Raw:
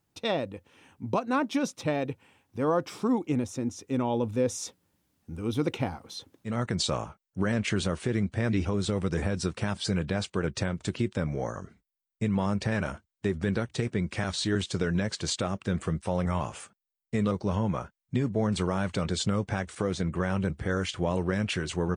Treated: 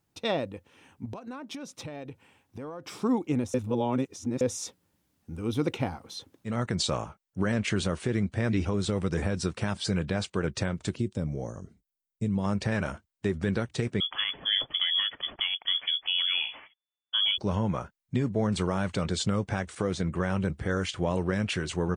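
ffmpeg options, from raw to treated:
-filter_complex "[0:a]asettb=1/sr,asplit=3[a][b][c];[a]atrim=end=1.054[d];[b]atrim=start=1.05:end=2.89,asetpts=PTS-STARTPTS,afade=t=in:d=0.004:c=qsin,afade=t=out:st=1.836:d=0.004:c=qsin,acompressor=threshold=-35dB:ratio=16:attack=3.2:release=140:knee=1:detection=peak[e];[c]atrim=start=2.886[f];[d][e]acrossfade=d=0.004:c1=hsin:c2=qsin[g];[g][f]acrossfade=d=0.004:c1=qsin:c2=hsin,asplit=3[h][i][j];[h]afade=t=out:st=10.94:d=0.02[k];[i]equalizer=f=1.6k:t=o:w=2.4:g=-13.5,afade=t=in:st=10.94:d=0.02,afade=t=out:st=12.43:d=0.02[l];[j]afade=t=in:st=12.43:d=0.02[m];[k][l][m]amix=inputs=3:normalize=0,asettb=1/sr,asplit=3[n][o][p];[n]atrim=end=14.004[q];[o]atrim=start=14:end=17.38,asetpts=PTS-STARTPTS,afade=t=in:d=0.004:c=qsin,afade=t=out:st=3.376:d=0.004:c=qsin,lowpass=f=3k:t=q:w=0.5098,lowpass=f=3k:t=q:w=0.6013,lowpass=f=3k:t=q:w=0.9,lowpass=f=3k:t=q:w=2.563,afreqshift=-3500[r];[p]atrim=start=17.376[s];[q][r]acrossfade=d=0.004:c1=hsin:c2=qsin[t];[t][s]acrossfade=d=0.004:c1=qsin:c2=hsin,asplit=3[u][v][w];[u]atrim=end=3.542[x];[v]atrim=start=3.538:end=4.412,asetpts=PTS-STARTPTS,areverse[y];[w]atrim=start=4.408[z];[x][y]acrossfade=d=0.004:c1=hsin:c2=hsin[aa];[aa][z]acrossfade=d=0.004:c1=hsin:c2=hsin"

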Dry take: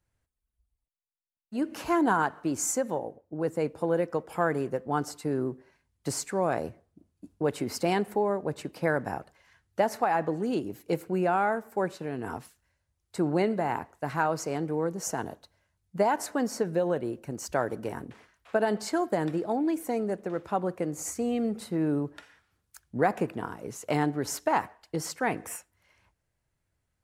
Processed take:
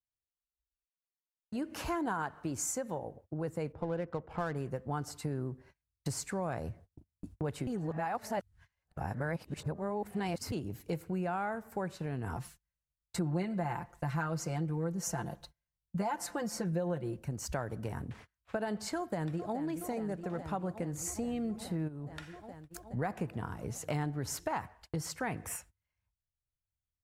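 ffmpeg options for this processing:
-filter_complex "[0:a]asettb=1/sr,asplit=3[a][b][c];[a]atrim=end=3.724[d];[b]atrim=start=3.72:end=4.56,asetpts=PTS-STARTPTS,afade=t=in:d=0.004:c=qsin,afade=t=out:st=0.836:d=0.004:c=qsin,adynamicsmooth=sensitivity=7.5:basefreq=1.4k[e];[c]atrim=start=4.556[f];[d][e]acrossfade=d=0.004:c1=hsin:c2=qsin[g];[g][f]acrossfade=d=0.004:c1=qsin:c2=hsin,asettb=1/sr,asplit=3[h][i][j];[h]atrim=end=12.354[k];[i]atrim=start=12.35:end=17.17,asetpts=PTS-STARTPTS,afade=t=in:d=0.004:c=qsin,afade=t=out:st=4.816:d=0.004:c=qsin,aecho=1:1:5.8:0.82,atrim=end_sample=212562[l];[j]atrim=start=17.166[m];[k][l]acrossfade=d=0.004:c1=hsin:c2=qsin[n];[n][m]acrossfade=d=0.004:c1=qsin:c2=hsin,asplit=2[o][p];[p]afade=t=in:st=18.97:d=0.01,afade=t=out:st=19.58:d=0.01,aecho=0:1:420|840|1260|1680|2100|2520|2940|3360|3780|4200|4620|5040:0.266073|0.212858|0.170286|0.136229|0.108983|0.0871866|0.0697493|0.0557994|0.0446396|0.0357116|0.0285693|0.0228555[q];[o][q]amix=inputs=2:normalize=0,asplit=3[r][s][t];[r]afade=t=out:st=21.87:d=0.02[u];[s]acompressor=threshold=-36dB:ratio=16:attack=3.2:release=140:knee=1:detection=peak,afade=t=in:st=21.87:d=0.02,afade=t=out:st=22.96:d=0.02[v];[t]afade=t=in:st=22.96:d=0.02[w];[u][v][w]amix=inputs=3:normalize=0,asplit=3[x][y][z];[x]atrim=end=7.672[aa];[y]atrim=start=7.668:end=10.522,asetpts=PTS-STARTPTS,areverse[ab];[z]atrim=start=10.518[ac];[aa][ab]acrossfade=d=0.004:c1=hsin:c2=hsin[ad];[ad][ac]acrossfade=d=0.004:c1=hsin:c2=hsin,agate=range=-28dB:threshold=-53dB:ratio=16:detection=peak,asubboost=boost=5.5:cutoff=130,acompressor=threshold=-39dB:ratio=2.5,volume=2dB"

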